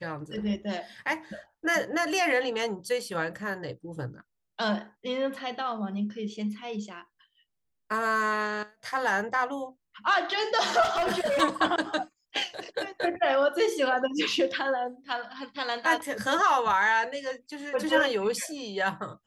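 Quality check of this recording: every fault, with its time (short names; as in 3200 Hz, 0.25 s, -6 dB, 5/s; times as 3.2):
10.82–11.42 clipped -23 dBFS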